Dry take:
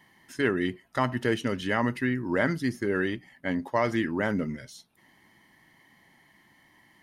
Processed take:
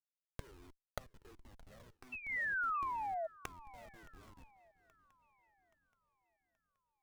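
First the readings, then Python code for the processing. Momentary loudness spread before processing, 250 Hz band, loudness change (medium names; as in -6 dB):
7 LU, -34.5 dB, -11.0 dB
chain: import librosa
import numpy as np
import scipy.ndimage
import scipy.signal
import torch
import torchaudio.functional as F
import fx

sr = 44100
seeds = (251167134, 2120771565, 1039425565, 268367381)

y = scipy.signal.sosfilt(scipy.signal.butter(4, 260.0, 'highpass', fs=sr, output='sos'), x)
y = fx.schmitt(y, sr, flips_db=-27.5)
y = fx.gate_flip(y, sr, shuts_db=-40.0, range_db=-31)
y = fx.spec_paint(y, sr, seeds[0], shape='fall', start_s=2.12, length_s=1.15, low_hz=630.0, high_hz=2700.0, level_db=-44.0)
y = fx.echo_swing(y, sr, ms=826, ratio=3, feedback_pct=45, wet_db=-22.0)
y = fx.comb_cascade(y, sr, direction='falling', hz=1.4)
y = F.gain(torch.from_numpy(y), 9.0).numpy()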